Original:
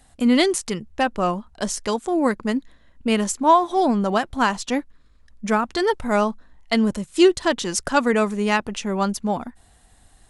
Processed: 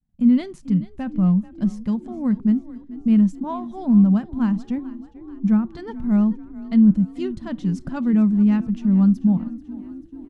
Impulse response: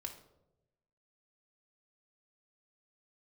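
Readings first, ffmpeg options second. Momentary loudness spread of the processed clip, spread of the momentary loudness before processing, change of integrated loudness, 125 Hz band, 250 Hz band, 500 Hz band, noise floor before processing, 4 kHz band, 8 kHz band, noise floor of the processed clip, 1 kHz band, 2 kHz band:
14 LU, 10 LU, +1.0 dB, +10.0 dB, +5.5 dB, −14.5 dB, −55 dBFS, below −15 dB, below −25 dB, −44 dBFS, −15.5 dB, below −15 dB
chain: -filter_complex "[0:a]firequalizer=gain_entry='entry(110,0);entry(180,13);entry(330,-16);entry(8200,-29)':delay=0.05:min_phase=1,asplit=2[link_01][link_02];[link_02]asplit=5[link_03][link_04][link_05][link_06][link_07];[link_03]adelay=437,afreqshift=31,volume=-18dB[link_08];[link_04]adelay=874,afreqshift=62,volume=-22.9dB[link_09];[link_05]adelay=1311,afreqshift=93,volume=-27.8dB[link_10];[link_06]adelay=1748,afreqshift=124,volume=-32.6dB[link_11];[link_07]adelay=2185,afreqshift=155,volume=-37.5dB[link_12];[link_08][link_09][link_10][link_11][link_12]amix=inputs=5:normalize=0[link_13];[link_01][link_13]amix=inputs=2:normalize=0,agate=range=-33dB:threshold=-42dB:ratio=3:detection=peak,asplit=2[link_14][link_15];[1:a]atrim=start_sample=2205,atrim=end_sample=3528[link_16];[link_15][link_16]afir=irnorm=-1:irlink=0,volume=-11dB[link_17];[link_14][link_17]amix=inputs=2:normalize=0"

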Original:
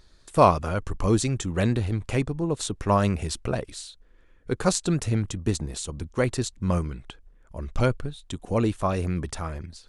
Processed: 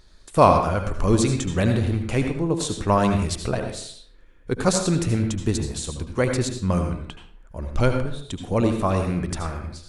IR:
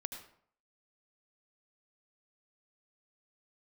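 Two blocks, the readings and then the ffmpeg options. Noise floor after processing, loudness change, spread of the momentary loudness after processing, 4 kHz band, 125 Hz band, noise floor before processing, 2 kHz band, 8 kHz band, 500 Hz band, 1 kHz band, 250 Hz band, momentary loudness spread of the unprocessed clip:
−49 dBFS, +3.0 dB, 12 LU, +3.0 dB, +3.0 dB, −56 dBFS, +3.0 dB, +2.5 dB, +3.5 dB, +3.5 dB, +3.5 dB, 13 LU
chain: -filter_complex "[1:a]atrim=start_sample=2205[link_01];[0:a][link_01]afir=irnorm=-1:irlink=0,volume=4.5dB"

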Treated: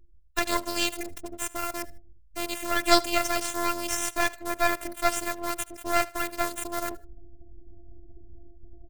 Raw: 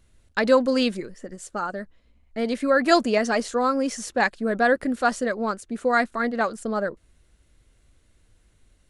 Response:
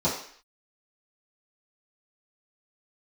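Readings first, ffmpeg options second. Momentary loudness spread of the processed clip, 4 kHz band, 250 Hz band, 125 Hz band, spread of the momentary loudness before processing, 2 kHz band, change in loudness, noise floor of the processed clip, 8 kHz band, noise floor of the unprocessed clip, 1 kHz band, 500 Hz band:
12 LU, +2.5 dB, −9.0 dB, can't be measured, 12 LU, −4.5 dB, −4.5 dB, −51 dBFS, +6.5 dB, −62 dBFS, −3.5 dB, −8.5 dB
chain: -filter_complex "[0:a]acrossover=split=340|1100[link_01][link_02][link_03];[link_01]acompressor=threshold=-40dB:ratio=6[link_04];[link_03]acrusher=bits=6:mix=0:aa=0.000001[link_05];[link_04][link_02][link_05]amix=inputs=3:normalize=0,tremolo=f=93:d=0.571,afftfilt=real='hypot(re,im)*cos(PI*b)':imag='0':win_size=512:overlap=0.75,areverse,acompressor=mode=upward:threshold=-31dB:ratio=2.5,areverse,aexciter=amount=2.6:drive=4.2:freq=2200,afftdn=noise_reduction=31:noise_floor=-52,aecho=1:1:77|154:0.0891|0.0232,aeval=exprs='max(val(0),0)':channel_layout=same,volume=4dB"

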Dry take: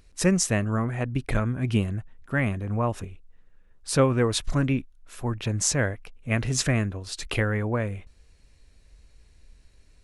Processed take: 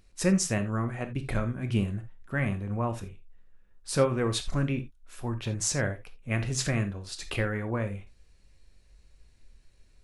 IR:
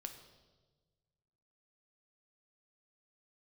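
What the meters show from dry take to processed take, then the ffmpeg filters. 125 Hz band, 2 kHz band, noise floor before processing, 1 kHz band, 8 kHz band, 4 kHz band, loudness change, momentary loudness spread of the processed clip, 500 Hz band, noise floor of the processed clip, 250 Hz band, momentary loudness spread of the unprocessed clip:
−4.0 dB, −4.0 dB, −57 dBFS, −4.0 dB, −4.5 dB, −4.0 dB, −4.0 dB, 13 LU, −3.5 dB, −59 dBFS, −3.5 dB, 11 LU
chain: -filter_complex "[1:a]atrim=start_sample=2205,atrim=end_sample=3969[link_01];[0:a][link_01]afir=irnorm=-1:irlink=0"

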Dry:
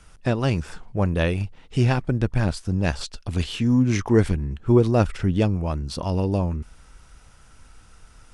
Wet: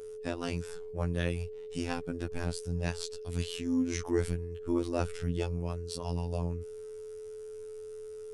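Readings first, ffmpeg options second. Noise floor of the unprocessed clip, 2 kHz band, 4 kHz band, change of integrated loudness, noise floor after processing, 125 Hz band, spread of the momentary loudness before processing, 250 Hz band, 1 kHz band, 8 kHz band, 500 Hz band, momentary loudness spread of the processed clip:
−51 dBFS, −10.5 dB, −8.0 dB, −12.0 dB, −44 dBFS, −13.5 dB, 9 LU, −11.5 dB, −11.5 dB, −4.0 dB, −9.0 dB, 13 LU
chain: -af "aeval=exprs='val(0)+0.0282*sin(2*PI*440*n/s)':channel_layout=same,aemphasis=mode=production:type=50kf,afftfilt=real='hypot(re,im)*cos(PI*b)':imag='0':win_size=2048:overlap=0.75,volume=-8.5dB"

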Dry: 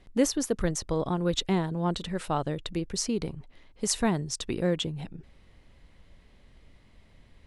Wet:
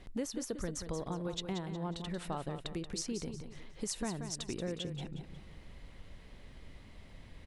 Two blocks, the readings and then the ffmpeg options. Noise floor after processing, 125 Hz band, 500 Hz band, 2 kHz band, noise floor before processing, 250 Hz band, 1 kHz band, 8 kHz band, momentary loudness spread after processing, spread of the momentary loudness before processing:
−54 dBFS, −9.0 dB, −10.5 dB, −10.0 dB, −58 dBFS, −10.0 dB, −11.0 dB, −9.0 dB, 17 LU, 7 LU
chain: -filter_complex "[0:a]acompressor=threshold=-44dB:ratio=3,asplit=2[link_01][link_02];[link_02]aecho=0:1:181|362|543|724:0.376|0.135|0.0487|0.0175[link_03];[link_01][link_03]amix=inputs=2:normalize=0,volume=3.5dB"

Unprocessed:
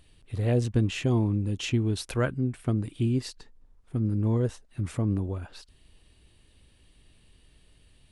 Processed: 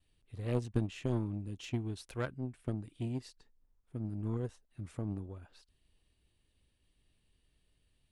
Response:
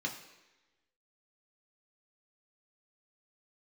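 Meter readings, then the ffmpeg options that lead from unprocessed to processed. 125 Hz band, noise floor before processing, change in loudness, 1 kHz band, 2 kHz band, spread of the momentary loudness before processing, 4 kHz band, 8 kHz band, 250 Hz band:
−11.0 dB, −61 dBFS, −10.5 dB, −9.0 dB, −11.0 dB, 10 LU, −13.5 dB, −14.0 dB, −10.5 dB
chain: -af "agate=range=-33dB:threshold=-57dB:ratio=3:detection=peak,aeval=exprs='0.224*(cos(1*acos(clip(val(0)/0.224,-1,1)))-cos(1*PI/2))+0.0501*(cos(3*acos(clip(val(0)/0.224,-1,1)))-cos(3*PI/2))':channel_layout=same,volume=-5dB"

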